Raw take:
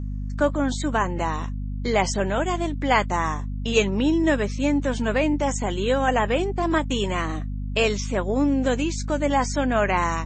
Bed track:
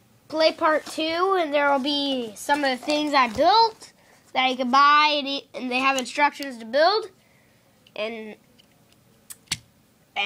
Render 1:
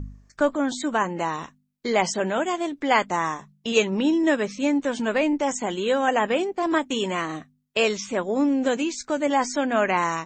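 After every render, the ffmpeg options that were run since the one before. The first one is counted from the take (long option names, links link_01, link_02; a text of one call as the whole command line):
ffmpeg -i in.wav -af "bandreject=frequency=50:width_type=h:width=4,bandreject=frequency=100:width_type=h:width=4,bandreject=frequency=150:width_type=h:width=4,bandreject=frequency=200:width_type=h:width=4,bandreject=frequency=250:width_type=h:width=4" out.wav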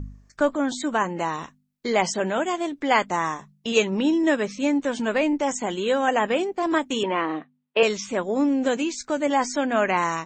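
ffmpeg -i in.wav -filter_complex "[0:a]asettb=1/sr,asplit=3[link_01][link_02][link_03];[link_01]atrim=end=7.034[link_04];[link_02]atrim=start=7.03:end=7.83,asetpts=PTS-STARTPTS,afade=type=in:duration=0.004:curve=qsin,afade=type=out:start_time=0.796:duration=0.004:curve=qsin,highpass=210,equalizer=frequency=320:width_type=q:width=4:gain=5,equalizer=frequency=480:width_type=q:width=4:gain=6,equalizer=frequency=910:width_type=q:width=4:gain=7,lowpass=frequency=3400:width=0.5412,lowpass=frequency=3400:width=1.3066[link_05];[link_03]atrim=start=7.826[link_06];[link_04][link_05]acrossfade=duration=0.004:curve1=hsin:curve2=qsin[link_07];[link_07][link_06]acrossfade=duration=0.004:curve1=qsin:curve2=hsin" out.wav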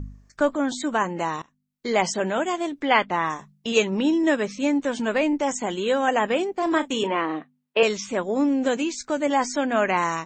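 ffmpeg -i in.wav -filter_complex "[0:a]asettb=1/sr,asplit=3[link_01][link_02][link_03];[link_01]atrim=end=2.854[link_04];[link_02]atrim=start=2.85:end=3.3,asetpts=PTS-STARTPTS,afade=type=in:duration=0.004:curve=qsin,afade=type=out:start_time=0.446:duration=0.004:curve=qsin,highshelf=frequency=5000:width_type=q:width=1.5:gain=-14[link_05];[link_03]atrim=start=3.296[link_06];[link_04][link_05]acrossfade=duration=0.004:curve1=hsin:curve2=qsin[link_07];[link_07][link_06]acrossfade=duration=0.004:curve1=qsin:curve2=hsin,asettb=1/sr,asplit=3[link_08][link_09][link_10];[link_08]atrim=end=6.584[link_11];[link_09]atrim=start=6.58:end=7.17,asetpts=PTS-STARTPTS,afade=type=in:duration=0.004:curve=qsin,afade=type=out:start_time=0.586:duration=0.004:curve=qsin,asplit=2[link_12][link_13];[link_13]adelay=36,volume=-12dB[link_14];[link_12][link_14]amix=inputs=2:normalize=0,atrim=end_sample=26019[link_15];[link_10]atrim=start=7.166[link_16];[link_11][link_15]acrossfade=duration=0.004:curve1=hsin:curve2=qsin[link_17];[link_17][link_16]acrossfade=duration=0.004:curve1=qsin:curve2=hsin,asplit=2[link_18][link_19];[link_18]atrim=end=1.42,asetpts=PTS-STARTPTS,afade=type=out:start_time=1.416:duration=0.004:curve=hsin:silence=0.0749894[link_20];[link_19]atrim=start=1.42,asetpts=PTS-STARTPTS,afade=type=in:duration=0.53:silence=0.0749894[link_21];[link_20][link_21]concat=n=2:v=0:a=1" out.wav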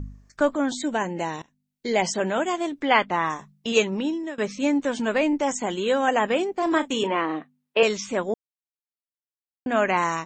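ffmpeg -i in.wav -filter_complex "[0:a]asettb=1/sr,asplit=3[link_01][link_02][link_03];[link_01]atrim=end=0.804[link_04];[link_02]atrim=start=0.8:end=2.06,asetpts=PTS-STARTPTS,afade=type=in:duration=0.004:curve=qsin,afade=type=out:start_time=1.256:duration=0.004:curve=qsin,equalizer=frequency=1200:width=3.8:gain=-14[link_05];[link_03]atrim=start=2.056[link_06];[link_04][link_05]acrossfade=duration=0.004:curve1=hsin:curve2=qsin[link_07];[link_07][link_06]acrossfade=duration=0.004:curve1=qsin:curve2=hsin,asplit=4[link_08][link_09][link_10][link_11];[link_08]atrim=end=4.38,asetpts=PTS-STARTPTS,afade=type=out:start_time=3.79:duration=0.59:silence=0.1[link_12];[link_09]atrim=start=4.38:end=8.34,asetpts=PTS-STARTPTS,afade=type=in:duration=0.004:curve=hsin:silence=0.1,afade=type=out:start_time=3.956:duration=0.004:curve=hsin[link_13];[link_10]atrim=start=8.34:end=9.66,asetpts=PTS-STARTPTS,volume=0[link_14];[link_11]atrim=start=9.66,asetpts=PTS-STARTPTS,afade=type=in:duration=0.004:curve=hsin[link_15];[link_12][link_13][link_14][link_15]concat=n=4:v=0:a=1" out.wav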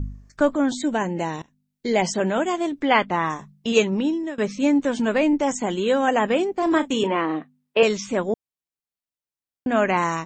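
ffmpeg -i in.wav -af "lowshelf=frequency=340:gain=6.5" out.wav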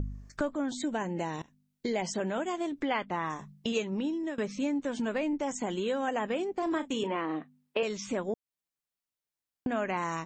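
ffmpeg -i in.wav -af "acompressor=threshold=-32dB:ratio=3" out.wav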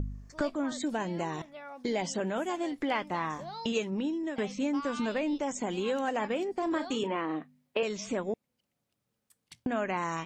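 ffmpeg -i in.wav -i bed.wav -filter_complex "[1:a]volume=-25dB[link_01];[0:a][link_01]amix=inputs=2:normalize=0" out.wav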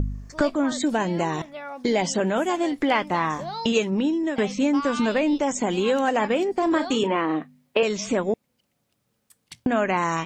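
ffmpeg -i in.wav -af "volume=9dB" out.wav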